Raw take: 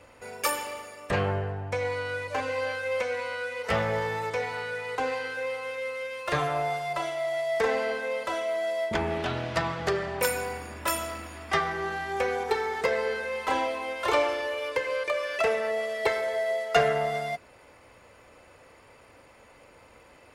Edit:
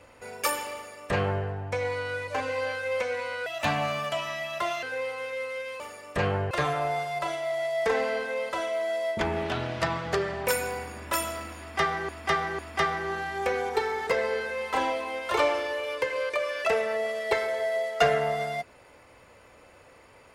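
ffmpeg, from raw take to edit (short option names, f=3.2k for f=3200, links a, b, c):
-filter_complex "[0:a]asplit=7[a][b][c][d][e][f][g];[a]atrim=end=3.464[h];[b]atrim=start=3.46:end=5.28,asetpts=PTS-STARTPTS,asetrate=58653,aresample=44100,atrim=end_sample=60347,asetpts=PTS-STARTPTS[i];[c]atrim=start=5.276:end=6.252[j];[d]atrim=start=0.738:end=1.452[k];[e]atrim=start=6.248:end=11.832[l];[f]atrim=start=11.328:end=11.832[m];[g]atrim=start=11.328[n];[h][i]acrossfade=d=0.004:c1=hsin:c2=hsin[o];[o][j]acrossfade=d=0.004:c1=hsin:c2=hsin[p];[p][k]acrossfade=d=0.004:c1=hsin:c2=hsin[q];[q][l]acrossfade=d=0.004:c1=hsin:c2=hsin[r];[r][m]acrossfade=d=0.004:c1=hsin:c2=hsin[s];[s][n]acrossfade=d=0.004:c1=hsin:c2=hsin"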